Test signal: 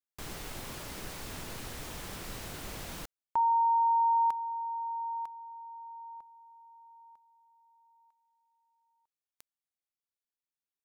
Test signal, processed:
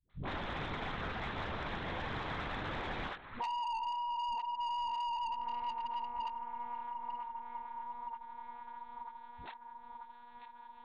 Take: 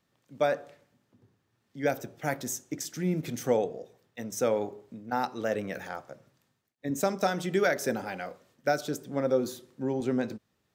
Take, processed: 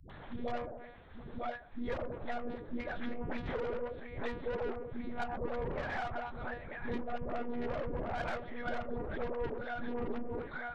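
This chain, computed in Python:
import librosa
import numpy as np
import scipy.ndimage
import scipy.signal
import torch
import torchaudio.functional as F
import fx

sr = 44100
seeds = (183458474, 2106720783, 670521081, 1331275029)

p1 = fx.phase_scramble(x, sr, seeds[0], window_ms=50)
p2 = scipy.signal.sosfilt(scipy.signal.bessel(2, 150.0, 'highpass', norm='mag', fs=sr, output='sos'), p1)
p3 = fx.low_shelf(p2, sr, hz=400.0, db=-5.5)
p4 = fx.hum_notches(p3, sr, base_hz=60, count=10)
p5 = p4 + fx.echo_banded(p4, sr, ms=938, feedback_pct=61, hz=1500.0, wet_db=-16.5, dry=0)
p6 = fx.env_lowpass_down(p5, sr, base_hz=510.0, full_db=-29.5)
p7 = fx.lpc_monotone(p6, sr, seeds[1], pitch_hz=240.0, order=8)
p8 = fx.over_compress(p7, sr, threshold_db=-39.0, ratio=-1.0)
p9 = p7 + (p8 * librosa.db_to_amplitude(-1.0))
p10 = fx.peak_eq(p9, sr, hz=2800.0, db=-7.0, octaves=0.55)
p11 = 10.0 ** (-36.0 / 20.0) * np.tanh(p10 / 10.0 ** (-36.0 / 20.0))
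p12 = fx.dispersion(p11, sr, late='highs', ms=98.0, hz=370.0)
p13 = fx.band_squash(p12, sr, depth_pct=70)
y = p13 * librosa.db_to_amplitude(3.0)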